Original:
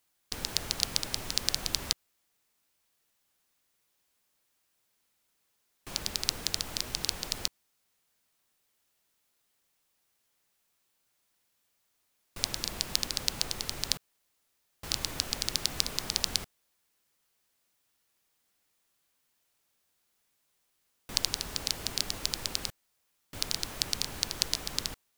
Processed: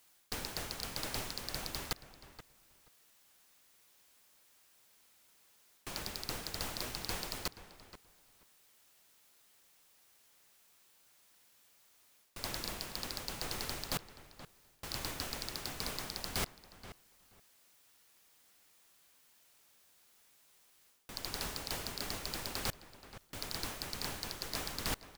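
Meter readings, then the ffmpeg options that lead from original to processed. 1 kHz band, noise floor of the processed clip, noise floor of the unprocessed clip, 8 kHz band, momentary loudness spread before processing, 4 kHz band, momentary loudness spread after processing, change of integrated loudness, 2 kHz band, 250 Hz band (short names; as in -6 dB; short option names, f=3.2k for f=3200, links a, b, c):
0.0 dB, -67 dBFS, -76 dBFS, -9.5 dB, 6 LU, -9.5 dB, 17 LU, -8.0 dB, -2.5 dB, -1.5 dB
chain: -filter_complex "[0:a]areverse,acompressor=threshold=-36dB:ratio=16,areverse,lowshelf=f=320:g=-3.5,asoftclip=type=hard:threshold=-33.5dB,asplit=2[a][b];[b]adelay=477,lowpass=f=2.7k:p=1,volume=-13dB,asplit=2[c][d];[d]adelay=477,lowpass=f=2.7k:p=1,volume=0.18[e];[a][c][e]amix=inputs=3:normalize=0,volume=9dB"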